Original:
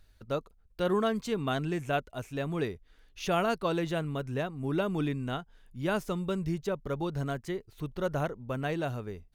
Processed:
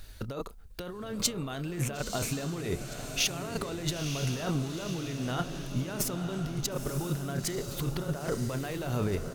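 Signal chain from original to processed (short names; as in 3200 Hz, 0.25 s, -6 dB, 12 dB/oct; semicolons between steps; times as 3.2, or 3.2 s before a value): doubler 29 ms -14 dB; negative-ratio compressor -40 dBFS, ratio -1; high shelf 4400 Hz +7 dB; diffused feedback echo 0.962 s, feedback 53%, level -7 dB; gain +5.5 dB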